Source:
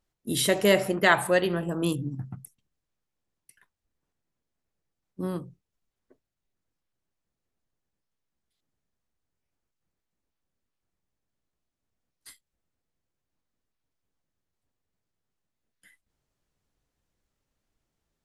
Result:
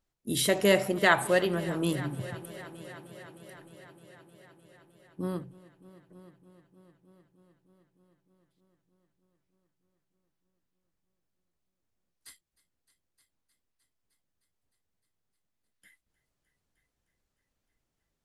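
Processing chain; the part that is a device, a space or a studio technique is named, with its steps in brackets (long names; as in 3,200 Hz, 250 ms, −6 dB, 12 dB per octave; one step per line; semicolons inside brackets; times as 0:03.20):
multi-head tape echo (echo machine with several playback heads 307 ms, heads all three, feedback 60%, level −22.5 dB; tape wow and flutter 23 cents)
level −2 dB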